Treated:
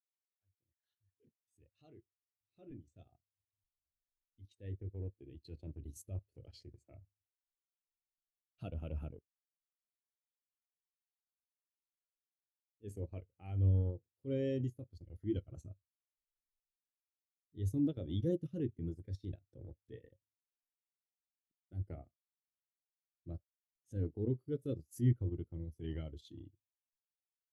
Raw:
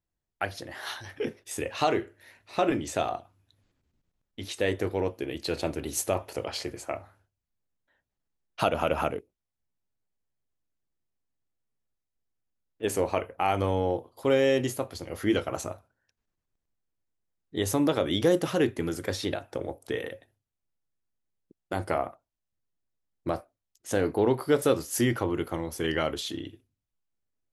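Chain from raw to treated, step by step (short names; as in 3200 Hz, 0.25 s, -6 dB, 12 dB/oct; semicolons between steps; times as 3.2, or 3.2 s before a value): opening faded in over 6.95 s; passive tone stack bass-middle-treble 10-0-1; transient shaper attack -8 dB, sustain -12 dB; spectral expander 1.5:1; gain +13 dB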